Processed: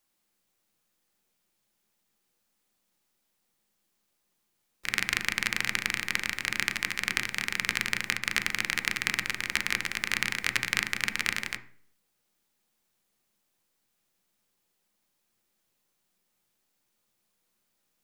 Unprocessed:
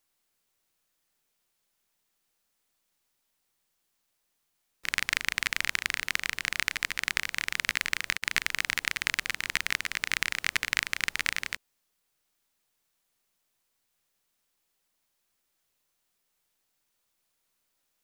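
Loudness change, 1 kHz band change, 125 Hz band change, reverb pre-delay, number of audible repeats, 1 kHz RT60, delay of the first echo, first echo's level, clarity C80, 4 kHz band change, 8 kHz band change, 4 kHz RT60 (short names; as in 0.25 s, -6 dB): +0.5 dB, +1.0 dB, +4.0 dB, 3 ms, none, 0.50 s, none, none, 17.5 dB, 0.0 dB, 0.0 dB, 0.50 s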